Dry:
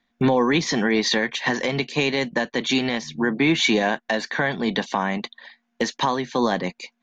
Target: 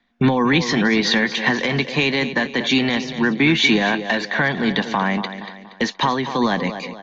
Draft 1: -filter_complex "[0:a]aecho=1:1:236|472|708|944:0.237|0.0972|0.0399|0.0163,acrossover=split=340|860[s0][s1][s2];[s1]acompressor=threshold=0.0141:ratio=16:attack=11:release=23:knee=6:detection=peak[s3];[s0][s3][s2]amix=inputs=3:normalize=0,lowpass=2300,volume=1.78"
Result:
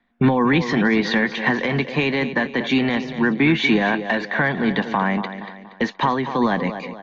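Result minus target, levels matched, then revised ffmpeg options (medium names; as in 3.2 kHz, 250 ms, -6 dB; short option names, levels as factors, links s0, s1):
4 kHz band -6.0 dB
-filter_complex "[0:a]aecho=1:1:236|472|708|944:0.237|0.0972|0.0399|0.0163,acrossover=split=340|860[s0][s1][s2];[s1]acompressor=threshold=0.0141:ratio=16:attack=11:release=23:knee=6:detection=peak[s3];[s0][s3][s2]amix=inputs=3:normalize=0,lowpass=4600,volume=1.78"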